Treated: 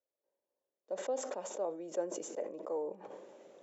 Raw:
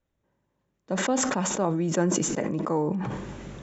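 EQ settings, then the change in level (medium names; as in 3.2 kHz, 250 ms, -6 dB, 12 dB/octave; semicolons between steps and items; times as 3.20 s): ladder high-pass 460 Hz, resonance 50%; peaking EQ 1.4 kHz -14.5 dB 2.8 oct; treble shelf 3.2 kHz -10.5 dB; +4.0 dB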